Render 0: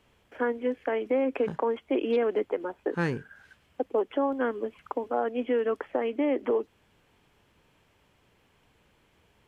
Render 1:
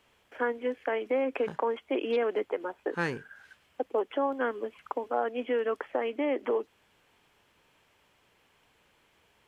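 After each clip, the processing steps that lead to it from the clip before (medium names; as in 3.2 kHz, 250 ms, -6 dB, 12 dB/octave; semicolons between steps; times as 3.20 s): bass shelf 350 Hz -10.5 dB; trim +1.5 dB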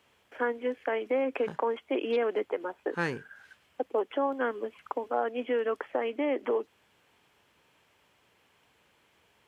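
high-pass 61 Hz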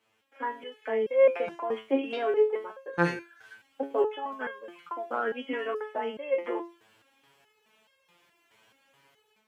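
bass shelf 86 Hz -12 dB; level rider gain up to 10 dB; resonator arpeggio 4.7 Hz 110–540 Hz; trim +4 dB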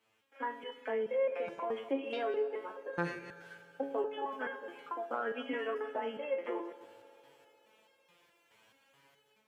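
chunks repeated in reverse 118 ms, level -14 dB; compression 2.5:1, threshold -30 dBFS, peak gain reduction 9.5 dB; reverberation RT60 3.4 s, pre-delay 3 ms, DRR 13.5 dB; trim -3 dB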